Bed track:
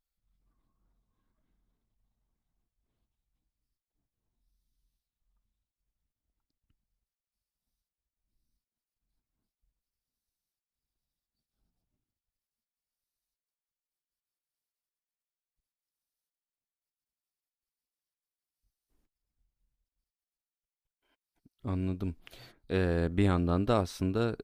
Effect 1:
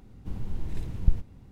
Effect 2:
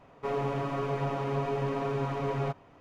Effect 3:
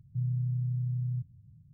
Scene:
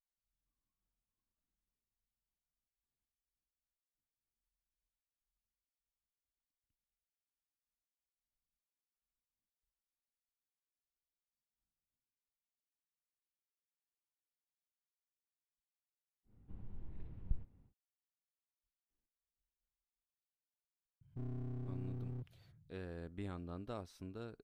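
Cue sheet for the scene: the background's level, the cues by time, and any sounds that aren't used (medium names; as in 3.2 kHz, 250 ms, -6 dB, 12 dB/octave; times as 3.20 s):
bed track -18.5 dB
16.23 s: add 1 -16.5 dB, fades 0.10 s + distance through air 410 m
21.01 s: add 3 -10 dB + one-sided wavefolder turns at -33 dBFS
not used: 2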